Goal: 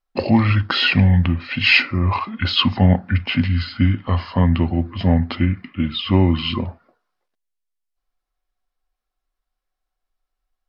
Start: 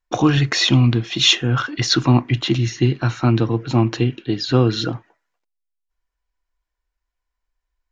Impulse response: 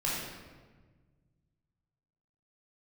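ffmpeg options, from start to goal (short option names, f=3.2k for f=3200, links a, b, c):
-af "asetrate=32667,aresample=44100"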